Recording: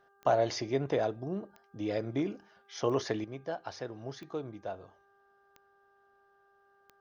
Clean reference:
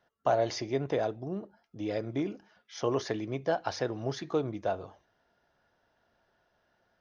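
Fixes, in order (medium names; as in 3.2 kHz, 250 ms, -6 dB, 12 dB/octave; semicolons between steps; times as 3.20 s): de-click; de-hum 397.5 Hz, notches 4; gain correction +8 dB, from 3.24 s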